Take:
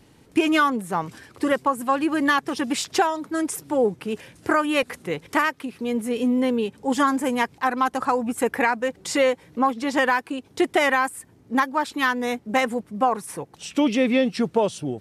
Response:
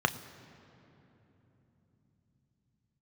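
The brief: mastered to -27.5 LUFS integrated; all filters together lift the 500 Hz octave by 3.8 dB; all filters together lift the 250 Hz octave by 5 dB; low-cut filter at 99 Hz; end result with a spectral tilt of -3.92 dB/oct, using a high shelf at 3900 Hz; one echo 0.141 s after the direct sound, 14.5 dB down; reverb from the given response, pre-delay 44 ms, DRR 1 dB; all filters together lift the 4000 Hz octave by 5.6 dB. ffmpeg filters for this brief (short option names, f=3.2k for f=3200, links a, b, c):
-filter_complex "[0:a]highpass=99,equalizer=f=250:t=o:g=5,equalizer=f=500:t=o:g=3,highshelf=f=3.9k:g=4.5,equalizer=f=4k:t=o:g=5,aecho=1:1:141:0.188,asplit=2[a][b];[1:a]atrim=start_sample=2205,adelay=44[c];[b][c]afir=irnorm=-1:irlink=0,volume=-12dB[d];[a][d]amix=inputs=2:normalize=0,volume=-10.5dB"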